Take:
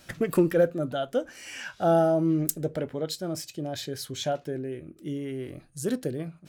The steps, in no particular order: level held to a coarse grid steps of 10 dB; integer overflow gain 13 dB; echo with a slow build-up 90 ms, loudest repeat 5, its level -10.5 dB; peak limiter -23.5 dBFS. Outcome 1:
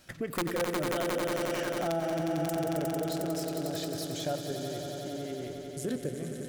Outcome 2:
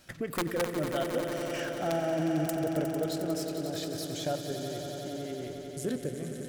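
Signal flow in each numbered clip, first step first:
integer overflow > level held to a coarse grid > echo with a slow build-up > peak limiter; integer overflow > level held to a coarse grid > peak limiter > echo with a slow build-up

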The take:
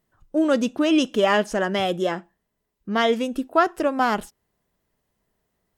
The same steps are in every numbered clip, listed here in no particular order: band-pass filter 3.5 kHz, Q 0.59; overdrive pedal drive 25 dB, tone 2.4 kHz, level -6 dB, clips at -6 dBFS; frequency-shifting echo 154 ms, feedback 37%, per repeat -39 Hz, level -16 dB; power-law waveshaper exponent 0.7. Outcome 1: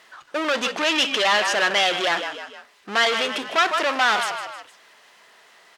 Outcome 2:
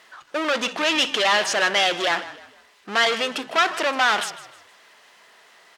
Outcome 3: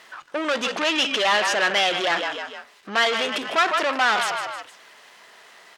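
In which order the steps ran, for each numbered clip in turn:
frequency-shifting echo > overdrive pedal > power-law waveshaper > band-pass filter; overdrive pedal > power-law waveshaper > band-pass filter > frequency-shifting echo; frequency-shifting echo > power-law waveshaper > overdrive pedal > band-pass filter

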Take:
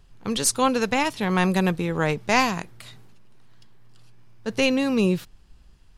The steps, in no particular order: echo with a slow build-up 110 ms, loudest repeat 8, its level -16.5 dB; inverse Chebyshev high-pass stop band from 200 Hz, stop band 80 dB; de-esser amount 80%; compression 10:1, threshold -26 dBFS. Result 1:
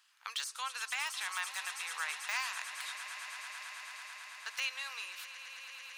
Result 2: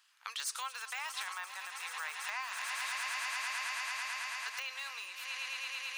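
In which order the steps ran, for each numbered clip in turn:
compression > echo with a slow build-up > de-esser > inverse Chebyshev high-pass; echo with a slow build-up > de-esser > compression > inverse Chebyshev high-pass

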